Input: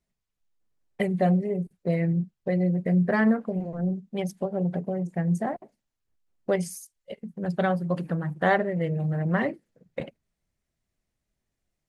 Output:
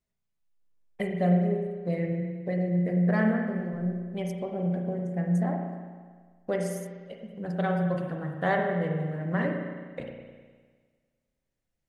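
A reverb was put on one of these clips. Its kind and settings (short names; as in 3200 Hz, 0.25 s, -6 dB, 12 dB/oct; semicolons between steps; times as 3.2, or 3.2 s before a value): spring tank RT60 1.6 s, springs 34/51 ms, chirp 75 ms, DRR 2 dB; gain -5 dB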